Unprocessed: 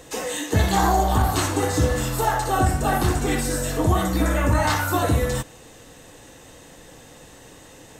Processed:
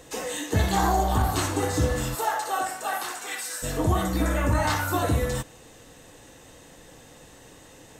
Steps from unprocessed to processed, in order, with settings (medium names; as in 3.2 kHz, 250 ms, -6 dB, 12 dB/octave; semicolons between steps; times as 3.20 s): 2.14–3.62 s: high-pass 430 Hz -> 1.3 kHz 12 dB/octave; trim -3.5 dB